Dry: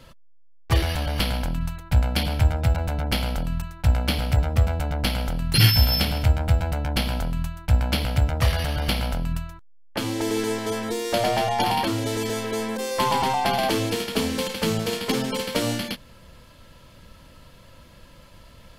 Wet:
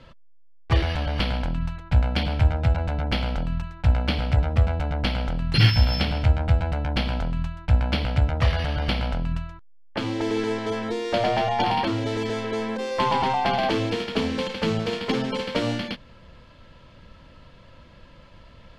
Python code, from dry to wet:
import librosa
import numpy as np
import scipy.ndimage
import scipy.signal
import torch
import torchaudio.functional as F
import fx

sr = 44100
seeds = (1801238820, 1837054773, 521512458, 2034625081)

y = scipy.signal.sosfilt(scipy.signal.butter(2, 3800.0, 'lowpass', fs=sr, output='sos'), x)